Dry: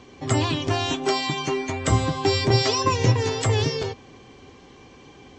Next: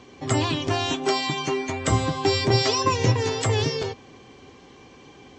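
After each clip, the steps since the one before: low shelf 66 Hz -7.5 dB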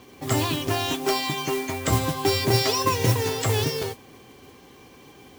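modulation noise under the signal 12 dB; gain -1 dB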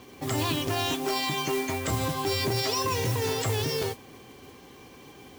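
limiter -18.5 dBFS, peak gain reduction 10 dB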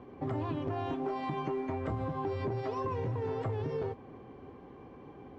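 LPF 1100 Hz 12 dB/oct; compressor, threshold -31 dBFS, peak gain reduction 7 dB

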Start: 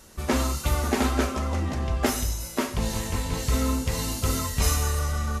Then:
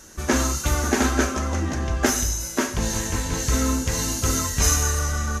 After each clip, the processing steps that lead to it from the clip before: thirty-one-band EQ 315 Hz +6 dB, 1600 Hz +8 dB, 6300 Hz +11 dB; gain +1.5 dB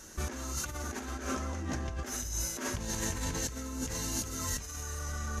negative-ratio compressor -28 dBFS, ratio -1; gain -8.5 dB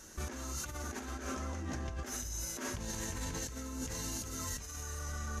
limiter -26 dBFS, peak gain reduction 5.5 dB; gain -3 dB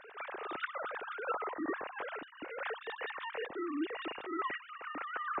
sine-wave speech

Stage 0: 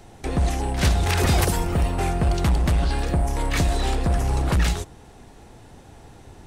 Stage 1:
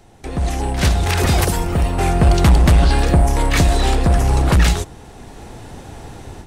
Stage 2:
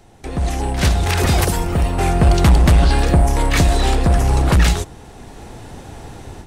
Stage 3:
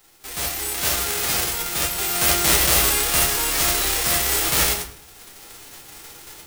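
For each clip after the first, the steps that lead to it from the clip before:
AGC gain up to 13 dB; gain -2 dB
nothing audible
spectral whitening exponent 0.1; shoebox room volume 40 m³, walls mixed, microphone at 0.5 m; gain -9.5 dB

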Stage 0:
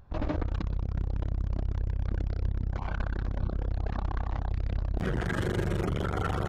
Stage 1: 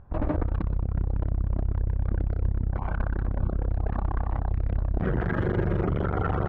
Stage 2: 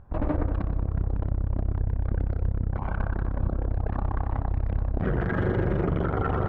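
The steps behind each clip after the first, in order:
LPF 1600 Hz 12 dB/oct; gain +4 dB
tape echo 92 ms, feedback 79%, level -8 dB, low-pass 2000 Hz; on a send at -19.5 dB: reverb RT60 0.60 s, pre-delay 4 ms

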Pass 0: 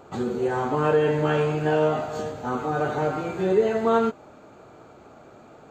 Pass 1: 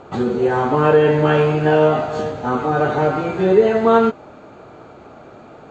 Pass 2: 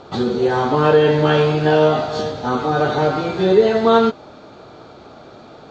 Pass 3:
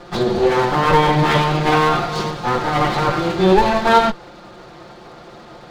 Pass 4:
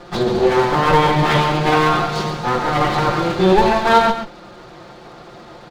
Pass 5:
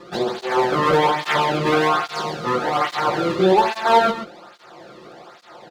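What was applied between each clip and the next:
LPF 5000 Hz 12 dB/oct; gain +7.5 dB
band shelf 4400 Hz +10.5 dB 1 oct
minimum comb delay 5.7 ms; gain +3 dB
echo 0.137 s -9 dB
tape flanging out of phase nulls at 1.2 Hz, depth 1.4 ms

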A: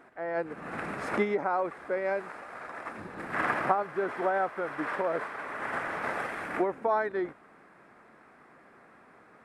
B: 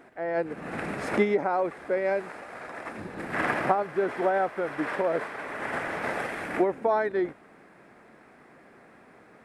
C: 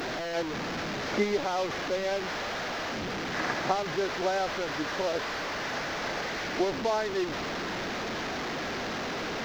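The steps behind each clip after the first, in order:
bell 1200 Hz -6.5 dB 0.98 oct; gain +5 dB
delta modulation 32 kbps, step -23.5 dBFS; in parallel at -9 dB: bit-crush 7-bit; on the sum: gain -6.5 dB

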